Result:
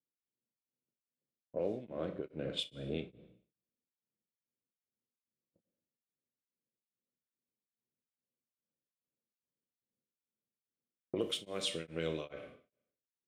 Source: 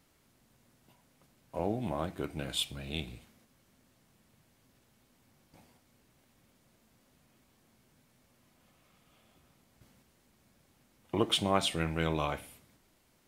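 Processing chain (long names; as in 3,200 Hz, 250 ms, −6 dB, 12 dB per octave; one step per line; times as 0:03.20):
high-pass filter 110 Hz 12 dB per octave
low shelf with overshoot 650 Hz +8.5 dB, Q 3
noise gate −47 dBFS, range −33 dB
tilt shelving filter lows −7.5 dB
low-pass that shuts in the quiet parts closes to 460 Hz, open at −19 dBFS
downward compressor, threshold −32 dBFS, peak gain reduction 15.5 dB
four-comb reverb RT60 0.62 s, combs from 29 ms, DRR 8.5 dB
tremolo along a rectified sine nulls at 2.4 Hz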